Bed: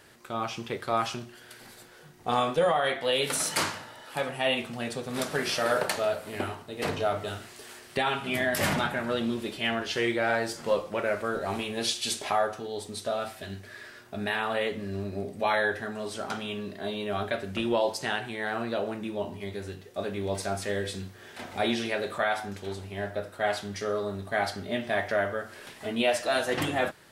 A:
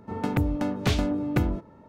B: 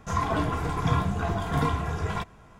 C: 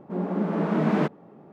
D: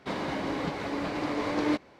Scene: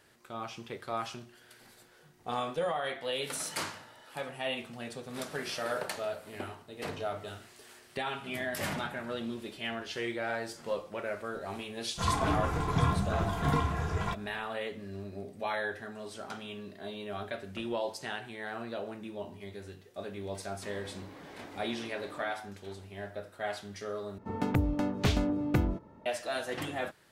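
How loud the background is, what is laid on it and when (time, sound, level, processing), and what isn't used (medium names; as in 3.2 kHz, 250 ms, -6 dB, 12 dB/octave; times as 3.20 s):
bed -8 dB
11.91 s: add B -3 dB, fades 0.10 s
20.56 s: add D -5.5 dB + level held to a coarse grid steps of 22 dB
24.18 s: replace with A -3.5 dB
not used: C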